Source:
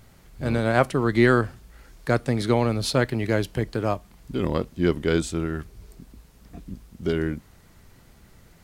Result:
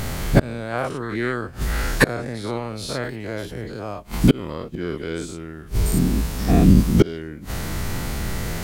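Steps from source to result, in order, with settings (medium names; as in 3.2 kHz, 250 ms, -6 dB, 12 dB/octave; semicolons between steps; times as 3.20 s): every event in the spectrogram widened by 120 ms; inverted gate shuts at -16 dBFS, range -31 dB; loudness maximiser +22 dB; trim -1 dB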